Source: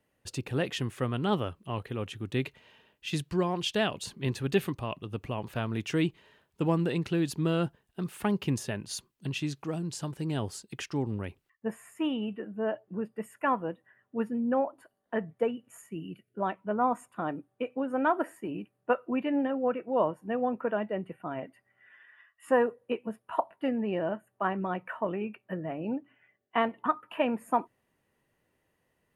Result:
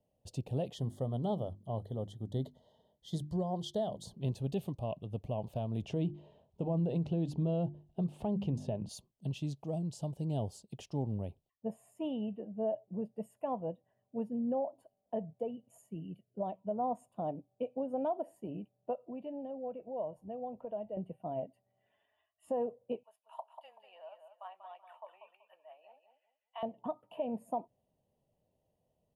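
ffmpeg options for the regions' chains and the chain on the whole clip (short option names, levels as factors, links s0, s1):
-filter_complex "[0:a]asettb=1/sr,asplit=3[s0][s1][s2];[s0]atrim=end=0.744[s3];[s1]atrim=start=0.74:end=4.14,asetpts=PTS-STARTPTS,afade=t=in:d=0.004:c=qsin,afade=t=out:st=3.396:d=0.004:c=qsin,asuperstop=centerf=2500:order=8:qfactor=2.5,bandreject=f=50:t=h:w=6,bandreject=f=100:t=h:w=6,bandreject=f=150:t=h:w=6,bandreject=f=200:t=h:w=6,bandreject=f=250:t=h:w=6,bandreject=f=300:t=h:w=6,bandreject=f=350:t=h:w=6[s4];[s2]atrim=start=4.136[s5];[s3][s4]acrossfade=d=0.004:c1=hsin:c2=qsin[s6];[s6][s5]acrossfade=d=0.004:c1=qsin:c2=hsin,asettb=1/sr,asplit=3[s7][s8][s9];[s7]atrim=end=5.824[s10];[s8]atrim=start=5.82:end=8.89,asetpts=PTS-STARTPTS,afade=t=in:d=0.004:c=qsin,afade=t=out:st=3.066:d=0.004:c=qsin,aemphasis=mode=reproduction:type=75fm,bandreject=f=50:t=h:w=6,bandreject=f=100:t=h:w=6,bandreject=f=150:t=h:w=6,bandreject=f=200:t=h:w=6,bandreject=f=250:t=h:w=6,bandreject=f=300:t=h:w=6,bandreject=f=350:t=h:w=6,acontrast=55[s11];[s9]atrim=start=8.886[s12];[s10][s11]acrossfade=d=0.004:c1=hsin:c2=qsin[s13];[s13][s12]acrossfade=d=0.004:c1=qsin:c2=hsin,asettb=1/sr,asplit=3[s14][s15][s16];[s14]atrim=end=18.954[s17];[s15]atrim=start=18.95:end=20.97,asetpts=PTS-STARTPTS,afade=t=in:d=0.004:c=qsin,afade=t=out:st=2.016:d=0.004:c=qsin,asubboost=boost=11:cutoff=72,acompressor=threshold=0.01:ratio=2:attack=3.2:release=140:knee=1:detection=peak[s18];[s16]atrim=start=20.966[s19];[s17][s18]acrossfade=d=0.004:c1=hsin:c2=qsin[s20];[s20][s19]acrossfade=d=0.004:c1=qsin:c2=hsin,asettb=1/sr,asplit=3[s21][s22][s23];[s21]atrim=end=23.034[s24];[s22]atrim=start=23.03:end=26.63,asetpts=PTS-STARTPTS,afade=t=in:d=0.004:c=qsin,afade=t=out:st=3.596:d=0.004:c=qsin,highpass=f=1100:w=0.5412,highpass=f=1100:w=1.3066,afreqshift=-15,aecho=1:1:190|380|570:0.398|0.107|0.029,atrim=end_sample=158760[s25];[s23]atrim=start=26.626[s26];[s24][s25]acrossfade=d=0.004:c1=hsin:c2=qsin[s27];[s27][s26]acrossfade=d=0.004:c1=qsin:c2=hsin,firequalizer=gain_entry='entry(180,0);entry(330,-8);entry(640,4);entry(1400,-27);entry(2000,-24);entry(3000,-10)':delay=0.05:min_phase=1,alimiter=level_in=1.06:limit=0.0631:level=0:latency=1:release=161,volume=0.944,volume=0.841"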